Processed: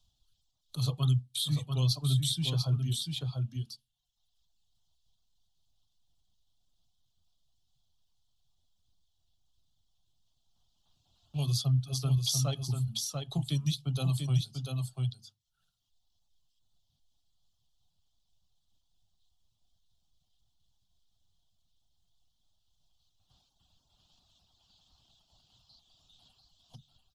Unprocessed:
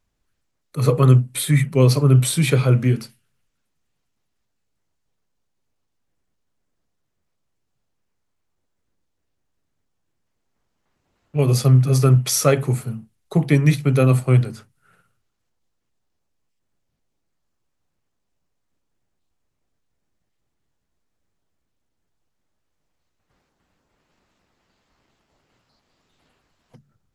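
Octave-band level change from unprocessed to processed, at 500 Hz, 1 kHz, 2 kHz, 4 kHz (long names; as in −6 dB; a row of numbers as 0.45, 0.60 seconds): −24.5, −18.0, −22.5, −2.5 decibels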